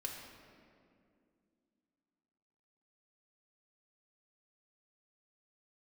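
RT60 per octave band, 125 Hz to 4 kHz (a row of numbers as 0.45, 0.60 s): 2.7, 3.5, 2.7, 2.1, 1.8, 1.4 s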